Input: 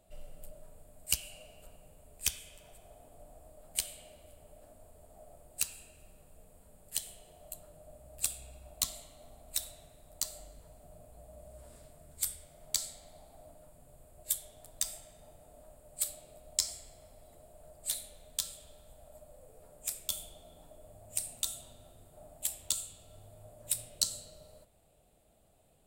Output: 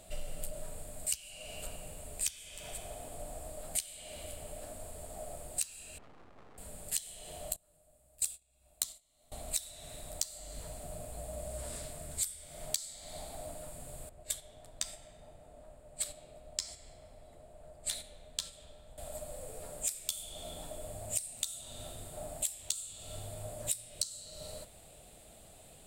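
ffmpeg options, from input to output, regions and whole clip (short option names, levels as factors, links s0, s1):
-filter_complex "[0:a]asettb=1/sr,asplit=3[s0][s1][s2];[s0]atrim=end=5.984[s3];[s1]atrim=start=5.98:end=6.58,asetpts=PTS-STARTPTS,afade=t=in:d=0.004:c=qsin,afade=t=out:st=0.596:d=0.004:c=qsin,highpass=100,adynamicsmooth=sensitivity=7:basefreq=860,aeval=exprs='abs(val(0))':c=same[s4];[s2]atrim=start=6.576[s5];[s3][s4]acrossfade=d=0.004:c1=hsin:c2=qsin[s6];[s6][s5]acrossfade=d=0.004:c1=qsin:c2=hsin,asettb=1/sr,asplit=3[s7][s8][s9];[s7]atrim=end=7.564[s10];[s8]atrim=start=7.56:end=9.32,asetpts=PTS-STARTPTS,afade=t=in:d=0.004:c=qsin,afade=t=out:st=1.756:d=0.004:c=qsin,agate=range=0.0631:threshold=0.00501:ratio=16:release=100:detection=peak,highshelf=f=7200:g=7[s11];[s9]atrim=start=9.316[s12];[s10][s11]acrossfade=d=0.004:c1=hsin:c2=qsin[s13];[s13][s12]acrossfade=d=0.004:c1=qsin:c2=hsin,asettb=1/sr,asplit=3[s14][s15][s16];[s14]atrim=end=14.094[s17];[s15]atrim=start=14.09:end=18.98,asetpts=PTS-STARTPTS,afade=t=in:d=0.004:c=qsin,afade=t=out:st=4.886:d=0.004:c=qsin,agate=range=0.398:threshold=0.00501:ratio=16:release=100:detection=peak,lowpass=f=1700:p=1[s18];[s16]atrim=start=18.976[s19];[s17][s18]acrossfade=d=0.004:c1=hsin:c2=qsin[s20];[s20][s19]acrossfade=d=0.004:c1=qsin:c2=hsin,equalizer=f=2000:t=o:w=1:g=4,equalizer=f=4000:t=o:w=1:g=5,equalizer=f=8000:t=o:w=1:g=7,acompressor=threshold=0.00794:ratio=16,volume=3.16"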